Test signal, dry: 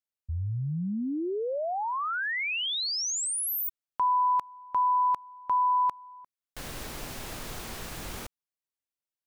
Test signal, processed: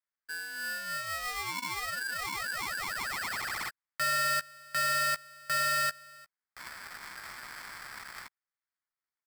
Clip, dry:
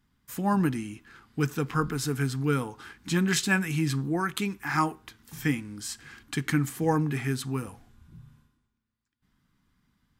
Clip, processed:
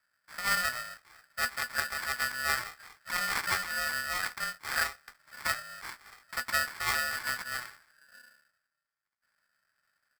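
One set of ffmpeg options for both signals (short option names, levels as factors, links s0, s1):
-filter_complex "[0:a]lowshelf=f=68:g=-7.5,acrusher=samples=36:mix=1:aa=0.000001,asplit=2[s0][s1];[s1]adelay=14,volume=0.335[s2];[s0][s2]amix=inputs=2:normalize=0,aresample=11025,aresample=44100,aeval=exprs='val(0)*sgn(sin(2*PI*1600*n/s))':c=same,volume=0.531"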